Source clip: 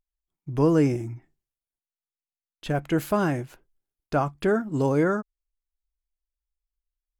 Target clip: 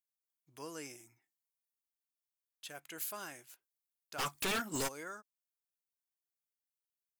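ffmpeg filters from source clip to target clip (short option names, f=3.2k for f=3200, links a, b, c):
-filter_complex "[0:a]aderivative,asplit=3[a][b][c];[a]afade=t=out:st=4.18:d=0.02[d];[b]aeval=exprs='0.0376*sin(PI/2*6.31*val(0)/0.0376)':c=same,afade=t=in:st=4.18:d=0.02,afade=t=out:st=4.87:d=0.02[e];[c]afade=t=in:st=4.87:d=0.02[f];[d][e][f]amix=inputs=3:normalize=0,volume=-2dB"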